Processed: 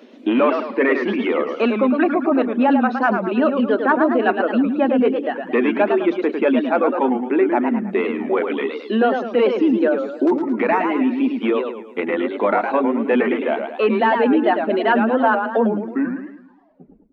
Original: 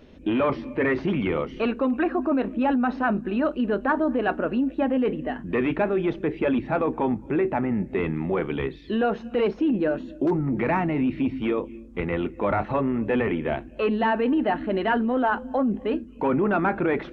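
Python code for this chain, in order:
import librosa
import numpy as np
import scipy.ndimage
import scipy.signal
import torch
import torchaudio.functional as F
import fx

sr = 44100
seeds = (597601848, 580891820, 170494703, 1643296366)

y = fx.tape_stop_end(x, sr, length_s=1.77)
y = fx.dereverb_blind(y, sr, rt60_s=1.0)
y = scipy.signal.sosfilt(scipy.signal.ellip(4, 1.0, 40, 220.0, 'highpass', fs=sr, output='sos'), y)
y = fx.echo_warbled(y, sr, ms=107, feedback_pct=44, rate_hz=2.8, cents=183, wet_db=-6.0)
y = F.gain(torch.from_numpy(y), 7.0).numpy()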